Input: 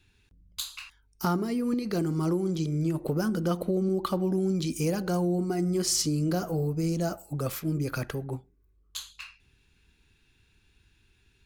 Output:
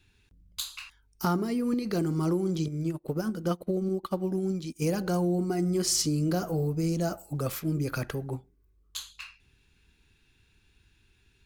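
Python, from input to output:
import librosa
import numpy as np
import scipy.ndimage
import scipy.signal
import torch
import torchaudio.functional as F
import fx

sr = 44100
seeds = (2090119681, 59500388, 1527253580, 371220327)

y = fx.quant_float(x, sr, bits=6)
y = fx.upward_expand(y, sr, threshold_db=-43.0, expansion=2.5, at=(2.68, 4.82))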